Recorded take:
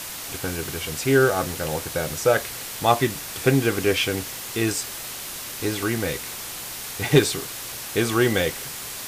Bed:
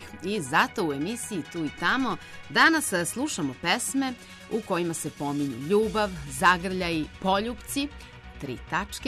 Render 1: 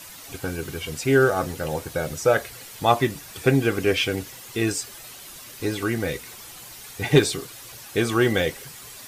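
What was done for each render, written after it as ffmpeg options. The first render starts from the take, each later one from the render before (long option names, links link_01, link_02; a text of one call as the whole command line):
ffmpeg -i in.wav -af "afftdn=noise_reduction=10:noise_floor=-34" out.wav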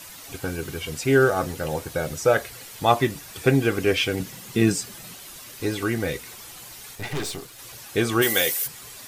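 ffmpeg -i in.wav -filter_complex "[0:a]asettb=1/sr,asplit=3[link_01][link_02][link_03];[link_01]atrim=end=4.204[link_04];[link_02]atrim=start=4.2:end=5.16,asetpts=PTS-STARTPTS,afade=type=in:duration=0.004:curve=qsin,afade=type=out:start_time=0.956:duration=0.004:curve=qsin,equalizer=frequency=180:width=1.5:gain=14.5[link_05];[link_03]atrim=start=5.156[link_06];[link_04][link_05]acrossfade=duration=0.004:curve1=hsin:curve2=qsin[link_07];[link_07][link_06]acrossfade=duration=0.004:curve1=qsin:curve2=hsin,asettb=1/sr,asplit=3[link_08][link_09][link_10];[link_08]atrim=end=6.954[link_11];[link_09]atrim=start=6.95:end=7.59,asetpts=PTS-STARTPTS,afade=type=in:duration=0.004:curve=qsin,afade=type=out:start_time=0.636:duration=0.004:curve=qsin,aeval=exprs='(tanh(20*val(0)+0.7)-tanh(0.7))/20':channel_layout=same[link_12];[link_10]atrim=start=7.586[link_13];[link_11][link_12]acrossfade=duration=0.004:curve1=hsin:curve2=qsin[link_14];[link_14][link_13]acrossfade=duration=0.004:curve1=qsin:curve2=hsin,asplit=3[link_15][link_16][link_17];[link_15]afade=type=out:start_time=8.21:duration=0.02[link_18];[link_16]aemphasis=mode=production:type=riaa,afade=type=in:start_time=8.21:duration=0.02,afade=type=out:start_time=8.66:duration=0.02[link_19];[link_17]afade=type=in:start_time=8.66:duration=0.02[link_20];[link_18][link_19][link_20]amix=inputs=3:normalize=0" out.wav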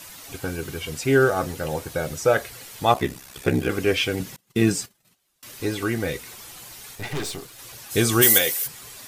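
ffmpeg -i in.wav -filter_complex "[0:a]asettb=1/sr,asplit=3[link_01][link_02][link_03];[link_01]atrim=end=2.934[link_04];[link_02]atrim=start=2.93:end=3.7,asetpts=PTS-STARTPTS,afade=type=in:duration=0.004:curve=qsin,afade=type=out:start_time=0.766:duration=0.004:curve=qsin,aeval=exprs='val(0)*sin(2*PI*33*n/s)':channel_layout=same[link_05];[link_03]atrim=start=3.696[link_06];[link_04][link_05]acrossfade=duration=0.004:curve1=hsin:curve2=qsin[link_07];[link_07][link_06]acrossfade=duration=0.004:curve1=qsin:curve2=hsin,asettb=1/sr,asplit=3[link_08][link_09][link_10];[link_08]atrim=end=4.364[link_11];[link_09]atrim=start=4.36:end=5.43,asetpts=PTS-STARTPTS,afade=type=in:duration=0.004:curve=qsin,afade=type=out:start_time=1.066:duration=0.004:curve=qsin,agate=range=-30dB:threshold=-38dB:ratio=16:release=100:detection=peak[link_12];[link_10]atrim=start=5.426[link_13];[link_11][link_12]acrossfade=duration=0.004:curve1=hsin:curve2=qsin[link_14];[link_14][link_13]acrossfade=duration=0.004:curve1=qsin:curve2=hsin,asplit=3[link_15][link_16][link_17];[link_15]afade=type=out:start_time=7.9:duration=0.02[link_18];[link_16]bass=frequency=250:gain=5,treble=frequency=4000:gain=11,afade=type=in:start_time=7.9:duration=0.02,afade=type=out:start_time=8.37:duration=0.02[link_19];[link_17]afade=type=in:start_time=8.37:duration=0.02[link_20];[link_18][link_19][link_20]amix=inputs=3:normalize=0" out.wav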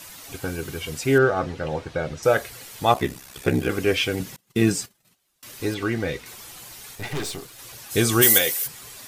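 ffmpeg -i in.wav -filter_complex "[0:a]asettb=1/sr,asplit=3[link_01][link_02][link_03];[link_01]atrim=end=1.184[link_04];[link_02]atrim=start=1.18:end=2.23,asetpts=PTS-STARTPTS,afade=type=in:duration=0.004:curve=qsin,afade=type=out:start_time=1.046:duration=0.004:curve=qsin,lowpass=3800[link_05];[link_03]atrim=start=2.226[link_06];[link_04][link_05]acrossfade=duration=0.004:curve1=hsin:curve2=qsin[link_07];[link_07][link_06]acrossfade=duration=0.004:curve1=qsin:curve2=hsin,asettb=1/sr,asplit=3[link_08][link_09][link_10];[link_08]atrim=end=5.744[link_11];[link_09]atrim=start=5.74:end=6.26,asetpts=PTS-STARTPTS,afade=type=in:duration=0.004:curve=qsin,afade=type=out:start_time=0.516:duration=0.004:curve=qsin,acrossover=split=5900[link_12][link_13];[link_13]acompressor=threshold=-53dB:ratio=4:attack=1:release=60[link_14];[link_12][link_14]amix=inputs=2:normalize=0[link_15];[link_10]atrim=start=6.256[link_16];[link_11][link_15]acrossfade=duration=0.004:curve1=hsin:curve2=qsin[link_17];[link_17][link_16]acrossfade=duration=0.004:curve1=qsin:curve2=hsin" out.wav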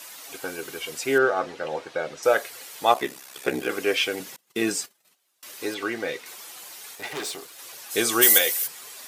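ffmpeg -i in.wav -af "highpass=390" out.wav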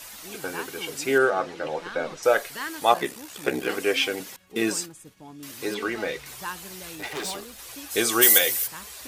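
ffmpeg -i in.wav -i bed.wav -filter_complex "[1:a]volume=-15dB[link_01];[0:a][link_01]amix=inputs=2:normalize=0" out.wav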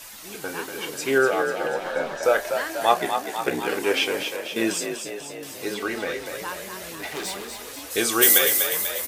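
ffmpeg -i in.wav -filter_complex "[0:a]asplit=2[link_01][link_02];[link_02]adelay=30,volume=-12.5dB[link_03];[link_01][link_03]amix=inputs=2:normalize=0,asplit=2[link_04][link_05];[link_05]asplit=8[link_06][link_07][link_08][link_09][link_10][link_11][link_12][link_13];[link_06]adelay=245,afreqshift=42,volume=-7dB[link_14];[link_07]adelay=490,afreqshift=84,volume=-11.2dB[link_15];[link_08]adelay=735,afreqshift=126,volume=-15.3dB[link_16];[link_09]adelay=980,afreqshift=168,volume=-19.5dB[link_17];[link_10]adelay=1225,afreqshift=210,volume=-23.6dB[link_18];[link_11]adelay=1470,afreqshift=252,volume=-27.8dB[link_19];[link_12]adelay=1715,afreqshift=294,volume=-31.9dB[link_20];[link_13]adelay=1960,afreqshift=336,volume=-36.1dB[link_21];[link_14][link_15][link_16][link_17][link_18][link_19][link_20][link_21]amix=inputs=8:normalize=0[link_22];[link_04][link_22]amix=inputs=2:normalize=0" out.wav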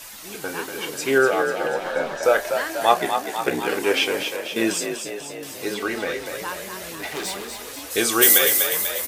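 ffmpeg -i in.wav -af "volume=2dB,alimiter=limit=-2dB:level=0:latency=1" out.wav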